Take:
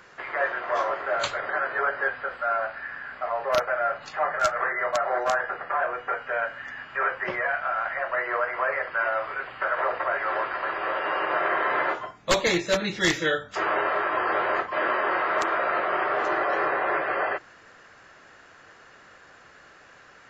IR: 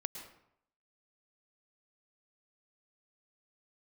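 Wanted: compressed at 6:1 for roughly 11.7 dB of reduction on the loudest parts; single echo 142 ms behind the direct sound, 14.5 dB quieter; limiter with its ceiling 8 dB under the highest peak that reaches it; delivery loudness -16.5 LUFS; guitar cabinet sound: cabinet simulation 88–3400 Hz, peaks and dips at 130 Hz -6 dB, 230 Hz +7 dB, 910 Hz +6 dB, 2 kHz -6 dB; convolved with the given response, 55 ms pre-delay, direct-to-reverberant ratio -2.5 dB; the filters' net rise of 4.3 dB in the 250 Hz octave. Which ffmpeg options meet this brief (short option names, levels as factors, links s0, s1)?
-filter_complex "[0:a]equalizer=f=250:t=o:g=4.5,acompressor=threshold=0.0316:ratio=6,alimiter=level_in=1.33:limit=0.0631:level=0:latency=1,volume=0.75,aecho=1:1:142:0.188,asplit=2[s0][s1];[1:a]atrim=start_sample=2205,adelay=55[s2];[s1][s2]afir=irnorm=-1:irlink=0,volume=1.41[s3];[s0][s3]amix=inputs=2:normalize=0,highpass=88,equalizer=f=130:t=q:w=4:g=-6,equalizer=f=230:t=q:w=4:g=7,equalizer=f=910:t=q:w=4:g=6,equalizer=f=2000:t=q:w=4:g=-6,lowpass=f=3400:w=0.5412,lowpass=f=3400:w=1.3066,volume=5.31"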